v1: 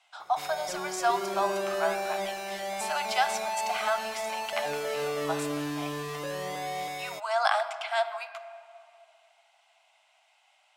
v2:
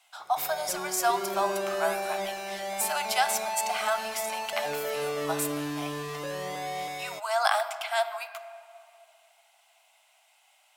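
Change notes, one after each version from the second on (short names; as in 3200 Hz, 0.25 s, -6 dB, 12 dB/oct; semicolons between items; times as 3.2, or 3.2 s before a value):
speech: remove air absorption 77 m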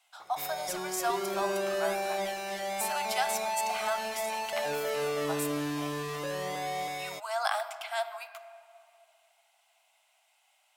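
speech -5.5 dB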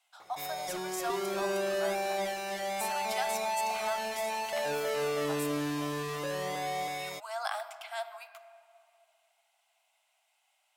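speech -5.0 dB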